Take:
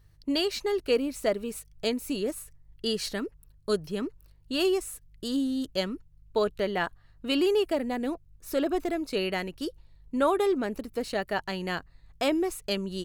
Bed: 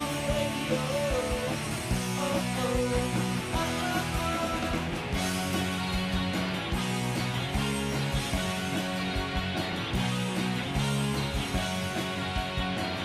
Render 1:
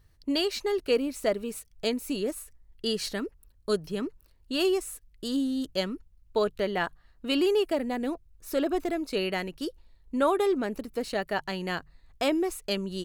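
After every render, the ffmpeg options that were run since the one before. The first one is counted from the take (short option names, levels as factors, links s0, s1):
-af "bandreject=f=50:t=h:w=4,bandreject=f=100:t=h:w=4,bandreject=f=150:t=h:w=4"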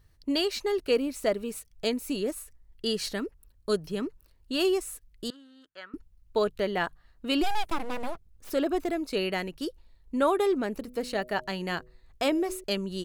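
-filter_complex "[0:a]asettb=1/sr,asplit=3[s0][s1][s2];[s0]atrim=end=5.304[s3];[s1]atrim=start=5.3:end=5.94,asetpts=PTS-STARTPTS,afade=t=in:d=0.004:c=qsin,afade=t=out:st=0.636:d=0.004:c=qsin,bandpass=f=1500:t=q:w=3.7[s4];[s2]atrim=start=5.936[s5];[s3][s4]acrossfade=d=0.004:c1=hsin:c2=qsin[s6];[s6][s5]acrossfade=d=0.004:c1=qsin:c2=hsin,asplit=3[s7][s8][s9];[s7]afade=t=out:st=7.42:d=0.02[s10];[s8]aeval=exprs='abs(val(0))':c=same,afade=t=in:st=7.42:d=0.02,afade=t=out:st=8.49:d=0.02[s11];[s9]afade=t=in:st=8.49:d=0.02[s12];[s10][s11][s12]amix=inputs=3:normalize=0,asettb=1/sr,asplit=3[s13][s14][s15];[s13]atrim=end=10.784[s16];[s14]atrim=start=10.78:end=12.64,asetpts=PTS-STARTPTS,afade=t=in:d=0.004:c=qsin,afade=t=out:st=1.856:d=0.004:c=qsin,bandreject=f=124.1:t=h:w=4,bandreject=f=248.2:t=h:w=4,bandreject=f=372.3:t=h:w=4,bandreject=f=496.4:t=h:w=4,bandreject=f=620.5:t=h:w=4[s17];[s15]atrim=start=12.636[s18];[s16][s17]acrossfade=d=0.004:c1=hsin:c2=qsin[s19];[s19][s18]acrossfade=d=0.004:c1=qsin:c2=hsin"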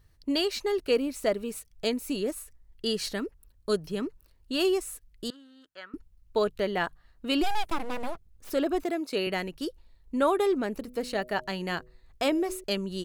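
-filter_complex "[0:a]asettb=1/sr,asplit=3[s0][s1][s2];[s0]atrim=end=8.834[s3];[s1]atrim=start=8.83:end=9.27,asetpts=PTS-STARTPTS,afade=t=in:d=0.004:c=qsin,afade=t=out:st=0.436:d=0.004:c=qsin,highpass=180[s4];[s2]atrim=start=9.266[s5];[s3][s4]acrossfade=d=0.004:c1=hsin:c2=qsin[s6];[s6][s5]acrossfade=d=0.004:c1=qsin:c2=hsin"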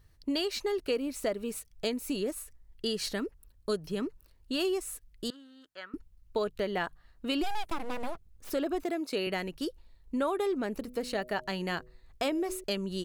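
-af "acompressor=threshold=0.0355:ratio=2.5"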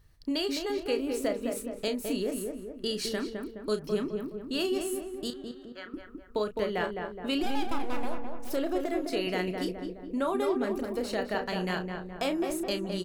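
-filter_complex "[0:a]asplit=2[s0][s1];[s1]adelay=33,volume=0.355[s2];[s0][s2]amix=inputs=2:normalize=0,asplit=2[s3][s4];[s4]adelay=210,lowpass=f=1500:p=1,volume=0.631,asplit=2[s5][s6];[s6]adelay=210,lowpass=f=1500:p=1,volume=0.55,asplit=2[s7][s8];[s8]adelay=210,lowpass=f=1500:p=1,volume=0.55,asplit=2[s9][s10];[s10]adelay=210,lowpass=f=1500:p=1,volume=0.55,asplit=2[s11][s12];[s12]adelay=210,lowpass=f=1500:p=1,volume=0.55,asplit=2[s13][s14];[s14]adelay=210,lowpass=f=1500:p=1,volume=0.55,asplit=2[s15][s16];[s16]adelay=210,lowpass=f=1500:p=1,volume=0.55[s17];[s3][s5][s7][s9][s11][s13][s15][s17]amix=inputs=8:normalize=0"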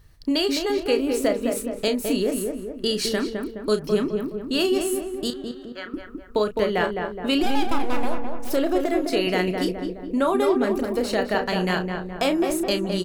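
-af "volume=2.51"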